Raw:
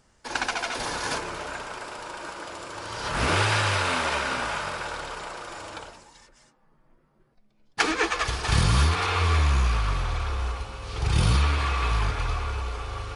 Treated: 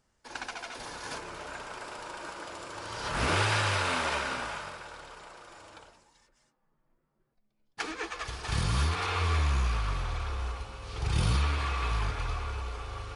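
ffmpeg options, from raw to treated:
-af "volume=1.33,afade=t=in:st=0.99:d=0.93:silence=0.446684,afade=t=out:st=4.13:d=0.7:silence=0.398107,afade=t=in:st=8.08:d=1.02:silence=0.473151"

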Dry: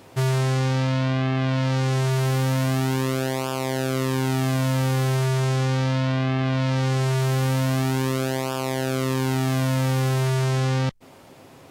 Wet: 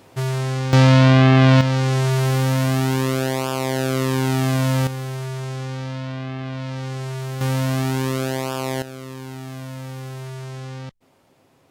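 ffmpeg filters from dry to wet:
-af "asetnsamples=n=441:p=0,asendcmd='0.73 volume volume 10.5dB;1.61 volume volume 3dB;4.87 volume volume -6.5dB;7.41 volume volume 1dB;8.82 volume volume -11dB',volume=0.841"

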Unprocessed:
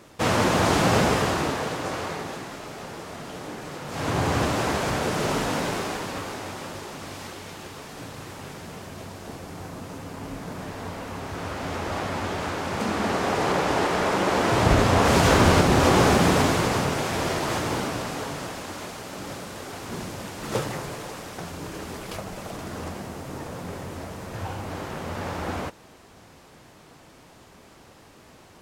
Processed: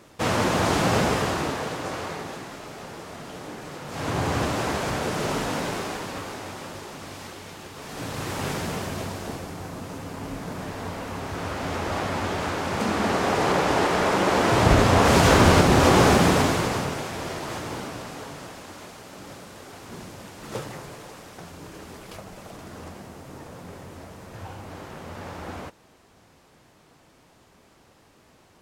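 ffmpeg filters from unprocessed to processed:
-af "volume=3.35,afade=t=in:st=7.74:d=0.76:silence=0.251189,afade=t=out:st=8.5:d=1.07:silence=0.354813,afade=t=out:st=16.12:d=1.02:silence=0.421697"

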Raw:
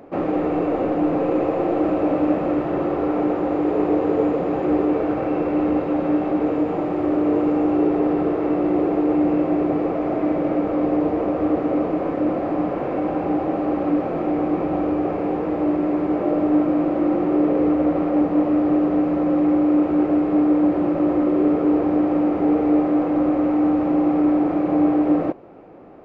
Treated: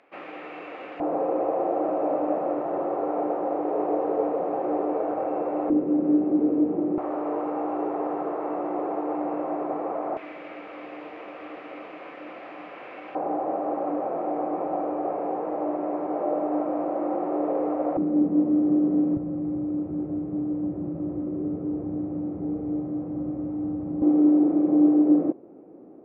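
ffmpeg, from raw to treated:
-af "asetnsamples=n=441:p=0,asendcmd='1 bandpass f 710;5.7 bandpass f 290;6.98 bandpass f 890;10.17 bandpass f 2600;13.15 bandpass f 740;17.97 bandpass f 230;19.17 bandpass f 120;24.02 bandpass f 300',bandpass=f=2500:t=q:w=1.6:csg=0"

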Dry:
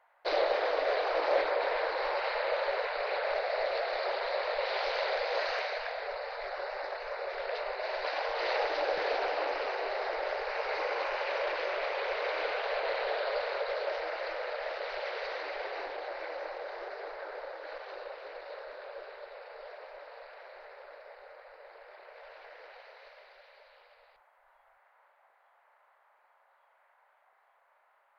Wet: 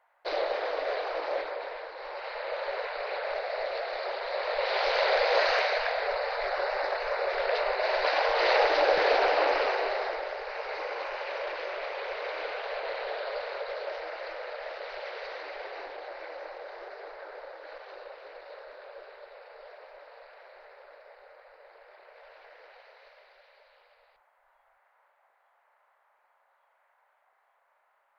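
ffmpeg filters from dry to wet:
-af "volume=6.31,afade=t=out:st=0.95:d=0.97:silence=0.375837,afade=t=in:st=1.92:d=0.89:silence=0.354813,afade=t=in:st=4.25:d=0.98:silence=0.375837,afade=t=out:st=9.57:d=0.72:silence=0.334965"

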